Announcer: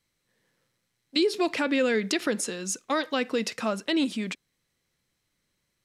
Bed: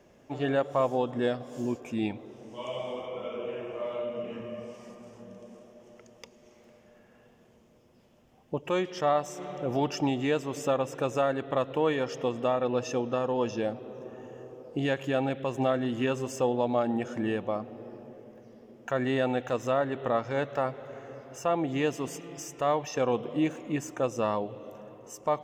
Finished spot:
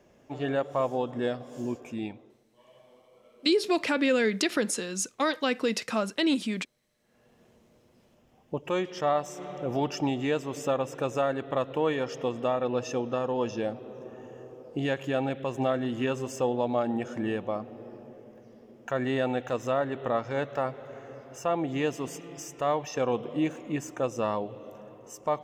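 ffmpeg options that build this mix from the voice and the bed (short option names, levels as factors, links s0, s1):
-filter_complex "[0:a]adelay=2300,volume=1[s0];[1:a]volume=10,afade=t=out:st=1.82:d=0.62:silence=0.0944061,afade=t=in:st=6.98:d=0.45:silence=0.0841395[s1];[s0][s1]amix=inputs=2:normalize=0"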